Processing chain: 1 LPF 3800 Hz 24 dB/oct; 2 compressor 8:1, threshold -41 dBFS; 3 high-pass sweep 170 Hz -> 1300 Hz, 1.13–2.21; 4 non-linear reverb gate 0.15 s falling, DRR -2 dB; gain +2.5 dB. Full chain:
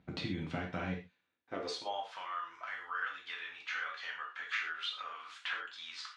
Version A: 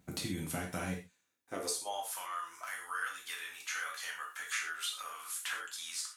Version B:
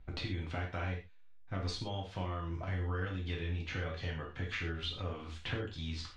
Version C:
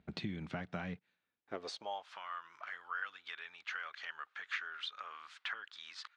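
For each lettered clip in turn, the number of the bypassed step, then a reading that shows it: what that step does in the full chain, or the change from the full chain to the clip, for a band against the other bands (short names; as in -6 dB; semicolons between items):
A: 1, 8 kHz band +19.5 dB; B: 3, 125 Hz band +11.5 dB; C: 4, loudness change -4.0 LU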